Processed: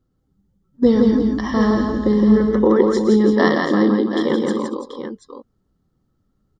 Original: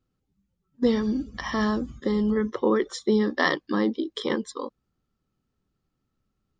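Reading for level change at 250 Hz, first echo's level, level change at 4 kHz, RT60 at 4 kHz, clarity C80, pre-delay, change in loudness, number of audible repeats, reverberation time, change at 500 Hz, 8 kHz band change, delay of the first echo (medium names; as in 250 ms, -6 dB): +10.5 dB, -19.5 dB, +2.5 dB, no reverb, no reverb, no reverb, +9.0 dB, 6, no reverb, +9.0 dB, no reading, 64 ms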